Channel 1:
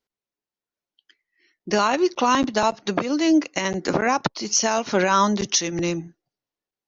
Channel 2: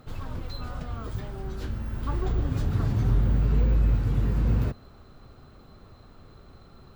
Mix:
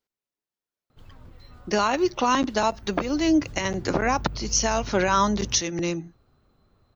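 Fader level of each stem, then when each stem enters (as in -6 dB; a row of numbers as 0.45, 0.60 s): -2.5, -13.0 dB; 0.00, 0.90 s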